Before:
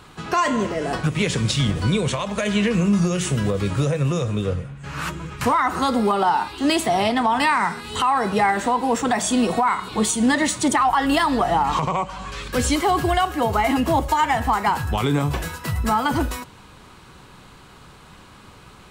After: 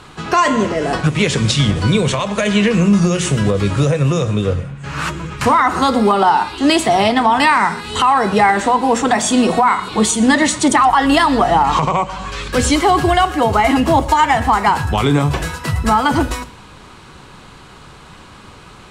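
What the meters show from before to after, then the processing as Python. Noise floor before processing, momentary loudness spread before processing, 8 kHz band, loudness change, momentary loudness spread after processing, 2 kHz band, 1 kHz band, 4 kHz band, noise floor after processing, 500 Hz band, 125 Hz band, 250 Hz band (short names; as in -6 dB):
-46 dBFS, 7 LU, +5.5 dB, +6.5 dB, 7 LU, +6.5 dB, +6.5 dB, +6.5 dB, -40 dBFS, +6.5 dB, +6.0 dB, +6.0 dB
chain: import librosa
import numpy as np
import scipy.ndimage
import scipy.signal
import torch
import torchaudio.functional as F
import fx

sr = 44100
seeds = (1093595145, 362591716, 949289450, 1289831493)

y = scipy.signal.sosfilt(scipy.signal.butter(2, 9900.0, 'lowpass', fs=sr, output='sos'), x)
y = fx.hum_notches(y, sr, base_hz=60, count=4)
y = y + 10.0 ** (-21.0 / 20.0) * np.pad(y, (int(121 * sr / 1000.0), 0))[:len(y)]
y = F.gain(torch.from_numpy(y), 6.5).numpy()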